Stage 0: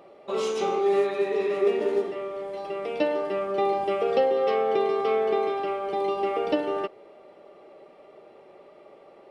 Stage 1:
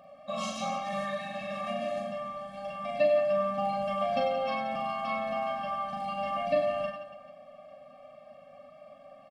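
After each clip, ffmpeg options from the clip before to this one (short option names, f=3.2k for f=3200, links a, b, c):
-filter_complex "[0:a]asplit=2[a][b];[b]aecho=0:1:40|96|174.4|284.2|437.8:0.631|0.398|0.251|0.158|0.1[c];[a][c]amix=inputs=2:normalize=0,afftfilt=real='re*eq(mod(floor(b*sr/1024/260),2),0)':imag='im*eq(mod(floor(b*sr/1024/260),2),0)':win_size=1024:overlap=0.75"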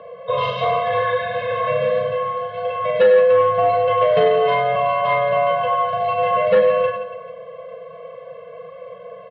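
-af "aeval=exprs='0.188*sin(PI/2*1.78*val(0)/0.188)':c=same,bandreject=f=2.6k:w=6.9,highpass=f=270:t=q:w=0.5412,highpass=f=270:t=q:w=1.307,lowpass=f=3.5k:t=q:w=0.5176,lowpass=f=3.5k:t=q:w=0.7071,lowpass=f=3.5k:t=q:w=1.932,afreqshift=-89,volume=6dB"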